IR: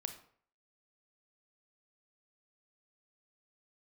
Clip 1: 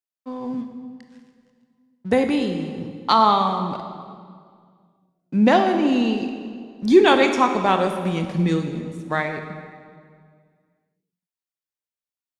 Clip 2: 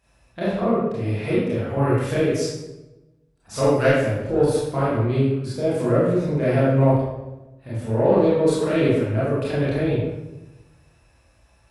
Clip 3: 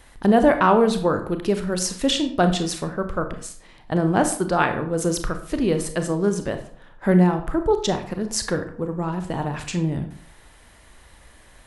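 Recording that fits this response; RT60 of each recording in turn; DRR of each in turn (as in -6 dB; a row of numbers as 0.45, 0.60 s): 3; 2.1, 1.1, 0.55 s; 5.5, -10.0, 7.0 dB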